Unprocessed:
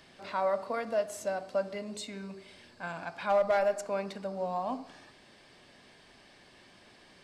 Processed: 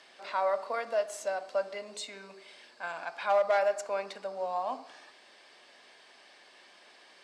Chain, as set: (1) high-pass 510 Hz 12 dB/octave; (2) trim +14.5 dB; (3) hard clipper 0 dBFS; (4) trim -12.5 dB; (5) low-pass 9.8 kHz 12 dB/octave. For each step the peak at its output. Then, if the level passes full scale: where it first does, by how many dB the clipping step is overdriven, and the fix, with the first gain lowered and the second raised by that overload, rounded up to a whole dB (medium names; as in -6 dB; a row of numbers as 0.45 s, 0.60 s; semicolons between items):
-18.0 dBFS, -3.5 dBFS, -3.5 dBFS, -16.0 dBFS, -16.0 dBFS; nothing clips